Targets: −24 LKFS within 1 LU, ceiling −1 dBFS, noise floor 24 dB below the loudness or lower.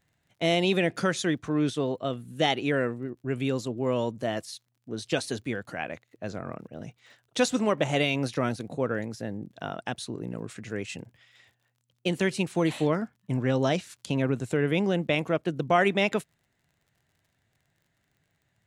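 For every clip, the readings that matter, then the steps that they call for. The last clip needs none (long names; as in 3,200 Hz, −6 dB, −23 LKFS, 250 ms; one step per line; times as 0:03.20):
crackle rate 38 per second; integrated loudness −28.5 LKFS; sample peak −9.0 dBFS; target loudness −24.0 LKFS
→ click removal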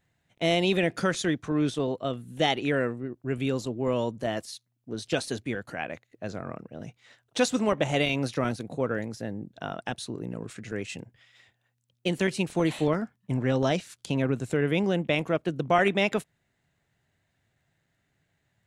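crackle rate 0 per second; integrated loudness −28.5 LKFS; sample peak −9.0 dBFS; target loudness −24.0 LKFS
→ level +4.5 dB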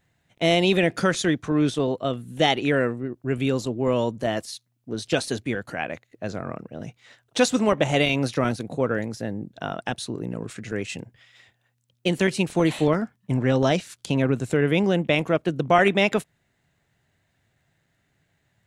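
integrated loudness −24.0 LKFS; sample peak −4.5 dBFS; background noise floor −71 dBFS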